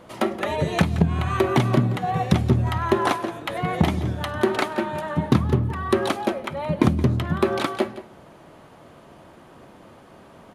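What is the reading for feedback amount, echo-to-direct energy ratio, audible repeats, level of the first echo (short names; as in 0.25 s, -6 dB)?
no steady repeat, -15.0 dB, 1, -15.0 dB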